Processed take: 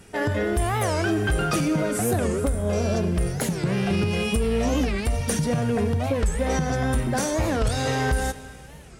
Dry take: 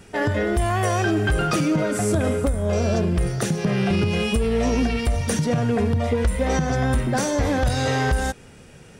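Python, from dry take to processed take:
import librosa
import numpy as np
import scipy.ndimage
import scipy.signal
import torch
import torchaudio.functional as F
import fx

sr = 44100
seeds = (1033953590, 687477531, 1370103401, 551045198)

y = fx.peak_eq(x, sr, hz=12000.0, db=7.0, octaves=0.75)
y = fx.rev_plate(y, sr, seeds[0], rt60_s=2.7, hf_ratio=1.0, predelay_ms=0, drr_db=13.5)
y = fx.record_warp(y, sr, rpm=45.0, depth_cents=250.0)
y = y * 10.0 ** (-2.5 / 20.0)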